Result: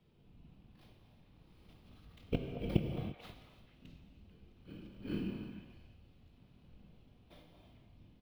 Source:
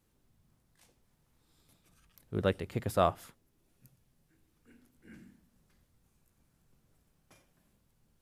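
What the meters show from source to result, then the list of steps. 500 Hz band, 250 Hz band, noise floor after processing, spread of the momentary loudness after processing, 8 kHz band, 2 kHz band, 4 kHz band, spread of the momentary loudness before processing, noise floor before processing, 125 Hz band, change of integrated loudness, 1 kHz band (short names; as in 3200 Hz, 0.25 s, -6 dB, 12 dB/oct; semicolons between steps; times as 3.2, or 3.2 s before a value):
-10.5 dB, +1.0 dB, -65 dBFS, 24 LU, under -15 dB, -8.5 dB, -5.0 dB, 10 LU, -74 dBFS, -1.0 dB, -8.5 dB, -19.0 dB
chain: FFT order left unsorted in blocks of 16 samples; flipped gate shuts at -24 dBFS, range -41 dB; resonant high shelf 2200 Hz +7.5 dB, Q 1.5; whisperiser; harmonic-percussive split percussive -11 dB; air absorption 480 m; doubler 20 ms -14 dB; delay with a stepping band-pass 0.22 s, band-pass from 780 Hz, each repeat 1.4 oct, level -5 dB; non-linear reverb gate 0.37 s flat, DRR 4 dB; three-band expander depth 40%; gain +16 dB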